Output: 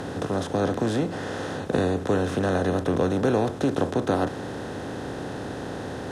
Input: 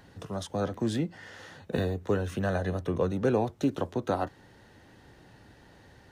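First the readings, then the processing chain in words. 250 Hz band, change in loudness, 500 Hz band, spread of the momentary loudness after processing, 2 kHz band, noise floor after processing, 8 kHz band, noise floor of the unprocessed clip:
+6.0 dB, +4.5 dB, +6.0 dB, 10 LU, +7.0 dB, −34 dBFS, +7.0 dB, −57 dBFS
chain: compressor on every frequency bin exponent 0.4
Chebyshev low-pass filter 12,000 Hz, order 3

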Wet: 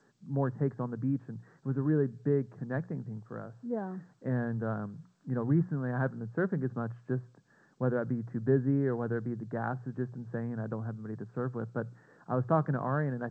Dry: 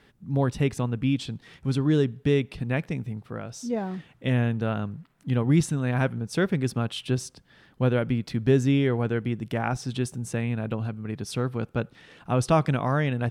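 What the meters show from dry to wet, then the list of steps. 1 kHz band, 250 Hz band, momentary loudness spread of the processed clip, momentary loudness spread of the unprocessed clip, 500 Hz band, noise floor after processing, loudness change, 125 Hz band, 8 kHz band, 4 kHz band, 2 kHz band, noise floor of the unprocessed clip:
−6.0 dB, −6.5 dB, 11 LU, 10 LU, −5.5 dB, −65 dBFS, −6.5 dB, −7.5 dB, below −30 dB, below −30 dB, −8.5 dB, −59 dBFS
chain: Chebyshev band-pass filter 110–1,700 Hz, order 5
mains-hum notches 60/120/180 Hz
level −5.5 dB
G.722 64 kbit/s 16,000 Hz

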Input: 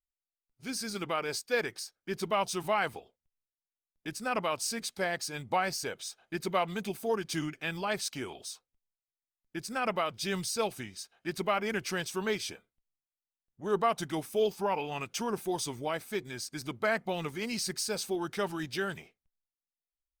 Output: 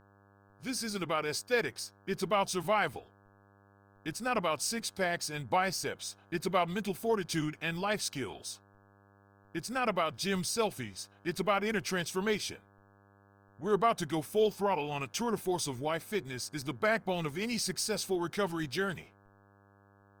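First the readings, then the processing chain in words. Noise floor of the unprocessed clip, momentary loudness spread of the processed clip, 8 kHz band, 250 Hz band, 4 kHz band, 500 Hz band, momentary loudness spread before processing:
below −85 dBFS, 10 LU, 0.0 dB, +1.0 dB, 0.0 dB, +0.5 dB, 10 LU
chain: hum with harmonics 100 Hz, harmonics 17, −64 dBFS −2 dB per octave
low-shelf EQ 100 Hz +8 dB

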